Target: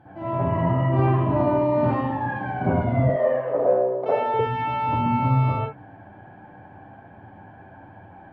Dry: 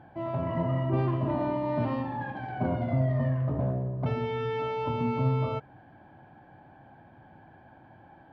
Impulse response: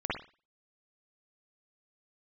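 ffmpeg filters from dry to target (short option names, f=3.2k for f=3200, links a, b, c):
-filter_complex "[0:a]asettb=1/sr,asplit=3[a][b][c];[a]atrim=end=3.034[d];[b]atrim=start=3.03:end=4.34,asetpts=PTS-STARTPTS,afade=t=in:d=0.004:c=qsin,afade=t=out:st=1.306:d=0.004:c=qsin,highpass=f=510:t=q:w=4.9[e];[c]atrim=start=4.336[f];[d][e]acrossfade=d=0.004:c1=hsin:c2=qsin[g];[g][f]acrossfade=d=0.004:c1=qsin:c2=hsin[h];[1:a]atrim=start_sample=2205,atrim=end_sample=6174,asetrate=38808,aresample=44100[i];[h][i]afir=irnorm=-1:irlink=0"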